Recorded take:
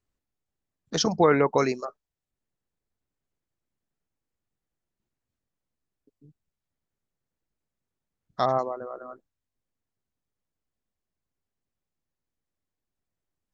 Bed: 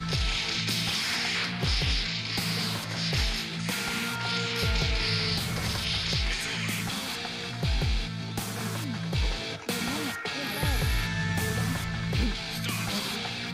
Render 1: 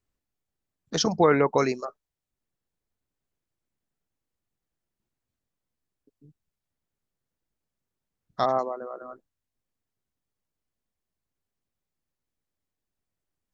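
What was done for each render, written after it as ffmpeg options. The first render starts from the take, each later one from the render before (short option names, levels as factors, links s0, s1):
-filter_complex "[0:a]asettb=1/sr,asplit=3[s0][s1][s2];[s0]atrim=end=8.444[s3];[s1]atrim=start=8.44:end=9.02,asetpts=PTS-STARTPTS,afade=t=in:d=0.004:c=qsin,afade=t=out:st=0.576:d=0.004:c=qsin,highpass=f=160:w=0.5412,highpass=f=160:w=1.3066[s4];[s2]atrim=start=9.016[s5];[s3][s4]acrossfade=d=0.004:c1=hsin:c2=qsin[s6];[s6][s5]acrossfade=d=0.004:c1=qsin:c2=hsin"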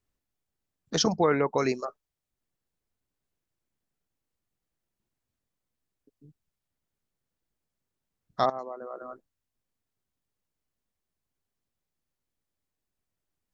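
-filter_complex "[0:a]asplit=4[s0][s1][s2][s3];[s0]atrim=end=1.142[s4];[s1]atrim=start=1.138:end=1.652,asetpts=PTS-STARTPTS,volume=0.631[s5];[s2]atrim=start=1.648:end=8.5,asetpts=PTS-STARTPTS,afade=t=out:st=6.848:d=0.004:c=hsin:silence=0.149624[s6];[s3]atrim=start=8.5,asetpts=PTS-STARTPTS,afade=t=in:d=0.53:silence=0.149624[s7];[s4][s5]acrossfade=d=0.004:c1=hsin:c2=hsin[s8];[s6][s7]concat=n=2:v=0:a=1[s9];[s8][s9]acrossfade=d=0.004:c1=hsin:c2=hsin"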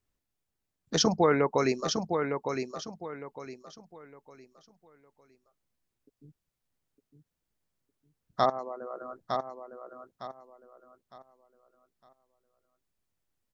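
-af "aecho=1:1:908|1816|2724|3632:0.501|0.15|0.0451|0.0135"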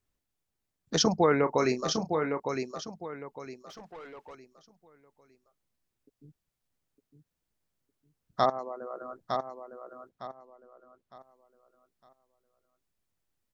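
-filter_complex "[0:a]asettb=1/sr,asplit=3[s0][s1][s2];[s0]atrim=end=1.404[s3];[s1]atrim=start=1.4:end=2.4,asetpts=PTS-STARTPTS,afade=t=in:d=0.004:c=qsin,afade=t=out:st=0.996:d=0.004:c=qsin,asplit=2[s4][s5];[s5]adelay=32,volume=0.282[s6];[s4][s6]amix=inputs=2:normalize=0,atrim=end_sample=44100[s7];[s2]atrim=start=2.396[s8];[s3][s7]acrossfade=d=0.004:c1=hsin:c2=qsin[s9];[s9][s8]acrossfade=d=0.004:c1=qsin:c2=hsin,asettb=1/sr,asplit=3[s10][s11][s12];[s10]atrim=end=3.694[s13];[s11]atrim=start=3.69:end=4.35,asetpts=PTS-STARTPTS,afade=t=in:d=0.004:c=qsin,afade=t=out:st=0.656:d=0.004:c=qsin,asplit=2[s14][s15];[s15]highpass=f=720:p=1,volume=12.6,asoftclip=type=tanh:threshold=0.0133[s16];[s14][s16]amix=inputs=2:normalize=0,lowpass=f=2400:p=1,volume=0.501[s17];[s12]atrim=start=4.346[s18];[s13][s17]acrossfade=d=0.004:c1=hsin:c2=qsin[s19];[s19][s18]acrossfade=d=0.004:c1=qsin:c2=hsin,asettb=1/sr,asplit=3[s20][s21][s22];[s20]atrim=end=10.094[s23];[s21]atrim=start=10.09:end=11.17,asetpts=PTS-STARTPTS,afade=t=in:d=0.004:c=qsin,afade=t=out:st=1.076:d=0.004:c=qsin,highshelf=f=5400:g=-8.5[s24];[s22]atrim=start=11.166[s25];[s23][s24]acrossfade=d=0.004:c1=hsin:c2=qsin[s26];[s26][s25]acrossfade=d=0.004:c1=qsin:c2=hsin"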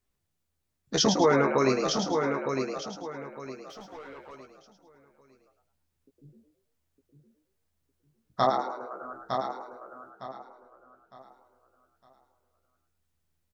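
-filter_complex "[0:a]asplit=2[s0][s1];[s1]adelay=15,volume=0.562[s2];[s0][s2]amix=inputs=2:normalize=0,asplit=2[s3][s4];[s4]asplit=4[s5][s6][s7][s8];[s5]adelay=107,afreqshift=79,volume=0.501[s9];[s6]adelay=214,afreqshift=158,volume=0.166[s10];[s7]adelay=321,afreqshift=237,volume=0.0543[s11];[s8]adelay=428,afreqshift=316,volume=0.018[s12];[s9][s10][s11][s12]amix=inputs=4:normalize=0[s13];[s3][s13]amix=inputs=2:normalize=0"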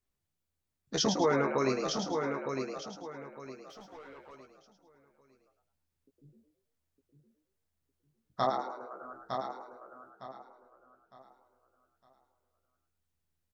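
-af "volume=0.531"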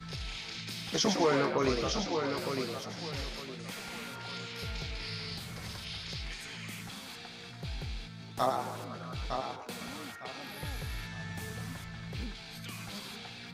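-filter_complex "[1:a]volume=0.251[s0];[0:a][s0]amix=inputs=2:normalize=0"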